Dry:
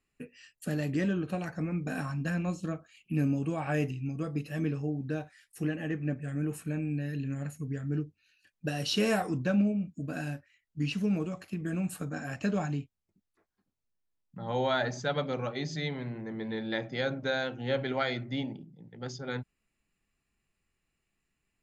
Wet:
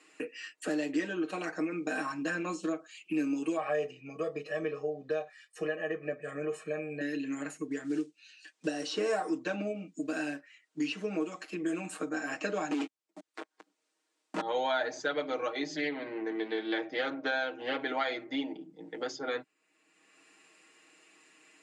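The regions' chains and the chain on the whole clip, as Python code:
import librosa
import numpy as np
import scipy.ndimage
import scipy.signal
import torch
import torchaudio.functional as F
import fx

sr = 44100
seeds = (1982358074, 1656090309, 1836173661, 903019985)

y = fx.chain(x, sr, fx.lowpass(hz=1200.0, slope=6),
    fx.comb(ms=1.7, depth=0.87), at=(3.57, 7.01))
y = fx.chain(y, sr, fx.block_float(bits=7),
    fx.lowpass(hz=9800.0, slope=24),
    fx.dynamic_eq(hz=2700.0, q=1.1, threshold_db=-48.0, ratio=4.0, max_db=-7), at=(7.71, 9.27))
y = fx.chain(y, sr, fx.steep_highpass(hz=170.0, slope=72),
    fx.over_compress(threshold_db=-40.0, ratio=-0.5),
    fx.leveller(passes=5), at=(12.71, 14.41))
y = fx.chain(y, sr, fx.lowpass(hz=6100.0, slope=12),
    fx.doppler_dist(depth_ms=0.16), at=(15.75, 17.81))
y = scipy.signal.sosfilt(scipy.signal.ellip(3, 1.0, 50, [300.0, 8500.0], 'bandpass', fs=sr, output='sos'), y)
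y = y + 0.8 * np.pad(y, (int(6.4 * sr / 1000.0), 0))[:len(y)]
y = fx.band_squash(y, sr, depth_pct=70)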